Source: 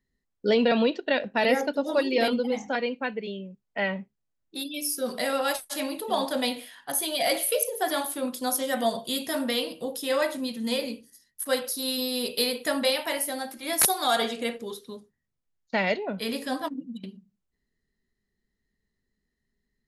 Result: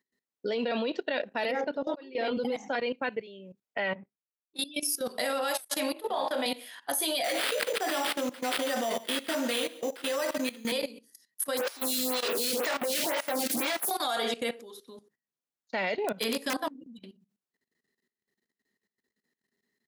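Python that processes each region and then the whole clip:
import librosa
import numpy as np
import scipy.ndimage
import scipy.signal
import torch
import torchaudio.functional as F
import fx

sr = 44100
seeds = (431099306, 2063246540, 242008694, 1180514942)

y = fx.chain(x, sr, fx.highpass(hz=200.0, slope=12),
    fx.auto_swell(attack_ms=526.0),
    fx.air_absorb(metres=220.0), at=(1.51, 2.37))
y = fx.chain(y, sr, fx.resample_bad(factor=2, down='none', up='filtered'),
    fx.band_widen(depth_pct=100), at=(3.95, 4.87))
y = fx.chain(y, sr, fx.bass_treble(bass_db=-13, treble_db=-10),
    fx.room_flutter(wall_m=5.3, rt60_s=0.28), at=(5.93, 6.46))
y = fx.chain(y, sr, fx.sample_hold(seeds[0], rate_hz=6600.0, jitter_pct=0),
    fx.highpass(hz=190.0, slope=24),
    fx.echo_single(ms=142, db=-14.5), at=(7.24, 10.72))
y = fx.chain(y, sr, fx.clip_1bit(),
    fx.low_shelf(hz=120.0, db=5.5),
    fx.stagger_phaser(hz=2.0), at=(11.57, 13.91))
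y = fx.chain(y, sr, fx.overflow_wrap(gain_db=20.5),
    fx.band_squash(depth_pct=70), at=(16.04, 16.64))
y = scipy.signal.sosfilt(scipy.signal.butter(2, 270.0, 'highpass', fs=sr, output='sos'), y)
y = fx.level_steps(y, sr, step_db=17)
y = y * 10.0 ** (4.5 / 20.0)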